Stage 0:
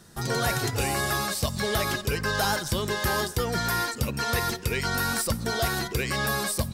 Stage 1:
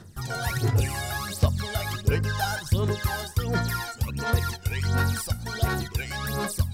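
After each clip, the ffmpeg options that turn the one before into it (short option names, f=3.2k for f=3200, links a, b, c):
-af "equalizer=f=95:t=o:w=0.45:g=11.5,areverse,acompressor=mode=upward:threshold=-30dB:ratio=2.5,areverse,aphaser=in_gain=1:out_gain=1:delay=1.4:decay=0.68:speed=1.4:type=sinusoidal,volume=-7dB"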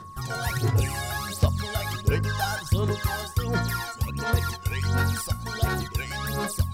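-af "aeval=exprs='val(0)+0.00891*sin(2*PI*1100*n/s)':c=same"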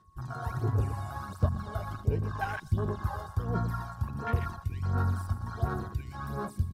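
-af "equalizer=f=520:w=5.4:g=-3.5,aecho=1:1:120|240|360|480|600|720:0.251|0.146|0.0845|0.049|0.0284|0.0165,afwtdn=0.0398,volume=-5dB"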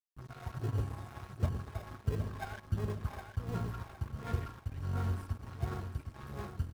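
-filter_complex "[0:a]asplit=2[a][b];[b]acrusher=samples=30:mix=1:aa=0.000001,volume=-6.5dB[c];[a][c]amix=inputs=2:normalize=0,aeval=exprs='sgn(val(0))*max(abs(val(0))-0.0112,0)':c=same,aecho=1:1:762|1524|2286|3048:0.398|0.135|0.046|0.0156,volume=-8dB"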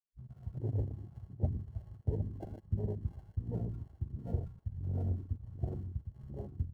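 -filter_complex "[0:a]acrossover=split=210|1000[a][b][c];[c]acrusher=samples=36:mix=1:aa=0.000001[d];[a][b][d]amix=inputs=3:normalize=0,afwtdn=0.0141"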